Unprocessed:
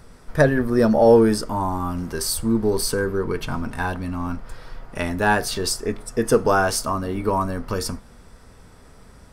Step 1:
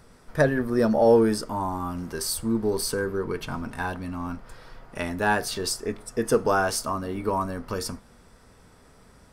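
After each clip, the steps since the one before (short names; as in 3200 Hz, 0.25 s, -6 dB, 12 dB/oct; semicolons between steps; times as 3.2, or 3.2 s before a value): low shelf 79 Hz -7 dB; gain -4 dB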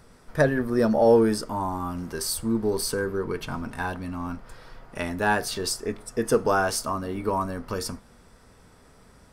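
nothing audible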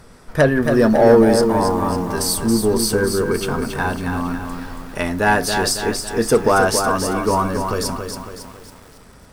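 in parallel at -5.5 dB: sine folder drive 5 dB, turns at -7.5 dBFS; on the sum: lo-fi delay 0.276 s, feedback 55%, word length 7-bit, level -6 dB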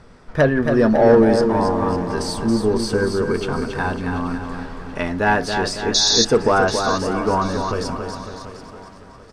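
painted sound noise, 5.94–6.25, 3400–6800 Hz -11 dBFS; air absorption 98 m; feedback echo 0.735 s, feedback 39%, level -15.5 dB; gain -1 dB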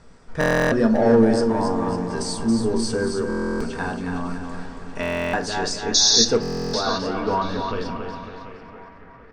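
low-pass sweep 8000 Hz -> 2100 Hz, 5.32–9.01; on a send at -7 dB: reverb RT60 0.40 s, pre-delay 4 ms; on the sum: stuck buffer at 0.39/3.28/5.01/6.41, samples 1024, times 13; gain -5.5 dB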